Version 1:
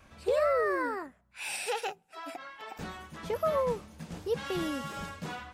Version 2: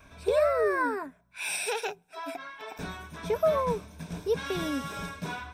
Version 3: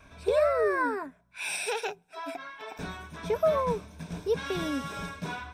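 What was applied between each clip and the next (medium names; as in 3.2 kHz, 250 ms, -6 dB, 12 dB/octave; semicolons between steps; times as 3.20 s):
rippled EQ curve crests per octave 1.6, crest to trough 9 dB; trim +2 dB
treble shelf 12 kHz -8.5 dB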